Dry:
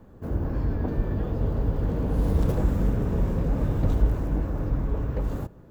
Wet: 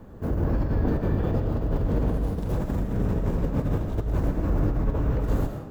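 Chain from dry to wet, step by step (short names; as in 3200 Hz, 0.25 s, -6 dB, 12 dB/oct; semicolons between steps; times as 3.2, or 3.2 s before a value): negative-ratio compressor -27 dBFS, ratio -1; digital reverb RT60 0.86 s, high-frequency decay 0.85×, pre-delay 70 ms, DRR 5 dB; gain +2 dB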